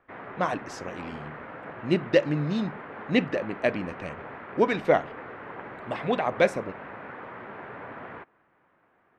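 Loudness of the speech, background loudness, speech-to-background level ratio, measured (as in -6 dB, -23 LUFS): -27.0 LUFS, -41.0 LUFS, 14.0 dB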